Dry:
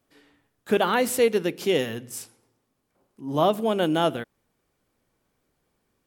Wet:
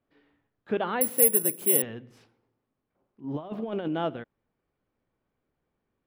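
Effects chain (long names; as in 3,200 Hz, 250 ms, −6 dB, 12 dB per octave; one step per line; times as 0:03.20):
0:03.24–0:03.88: compressor whose output falls as the input rises −25 dBFS, ratio −0.5
high-frequency loss of the air 320 metres
0:01.01–0:01.82: bad sample-rate conversion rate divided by 4×, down none, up zero stuff
level −5.5 dB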